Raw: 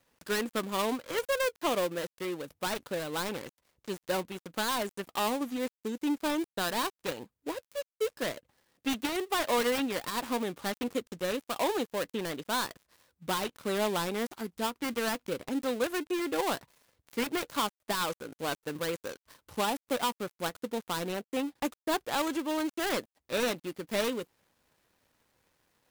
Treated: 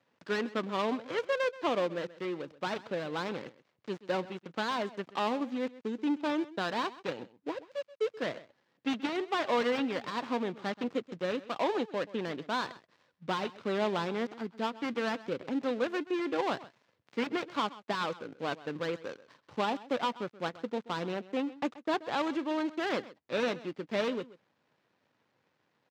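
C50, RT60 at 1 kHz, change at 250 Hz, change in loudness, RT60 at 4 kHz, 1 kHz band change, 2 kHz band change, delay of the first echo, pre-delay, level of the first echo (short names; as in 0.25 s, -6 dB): none, none, 0.0 dB, -1.0 dB, none, -0.5 dB, -1.5 dB, 0.13 s, none, -18.0 dB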